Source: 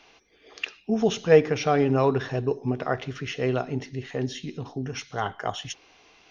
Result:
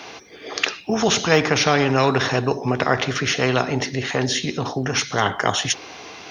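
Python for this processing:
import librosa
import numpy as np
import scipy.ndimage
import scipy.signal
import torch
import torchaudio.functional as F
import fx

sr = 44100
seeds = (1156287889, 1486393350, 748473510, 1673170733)

y = scipy.signal.sosfilt(scipy.signal.butter(4, 79.0, 'highpass', fs=sr, output='sos'), x)
y = fx.peak_eq(y, sr, hz=2800.0, db=-4.5, octaves=0.64)
y = fx.spectral_comp(y, sr, ratio=2.0)
y = F.gain(torch.from_numpy(y), 3.0).numpy()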